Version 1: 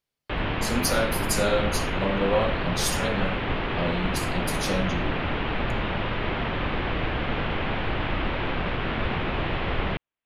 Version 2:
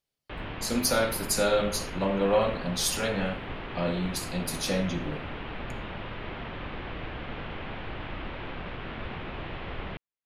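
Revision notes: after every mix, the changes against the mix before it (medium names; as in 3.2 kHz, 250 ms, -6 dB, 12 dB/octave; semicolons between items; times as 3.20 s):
background -10.0 dB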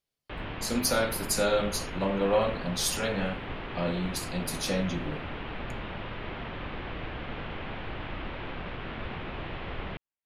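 speech: send -10.5 dB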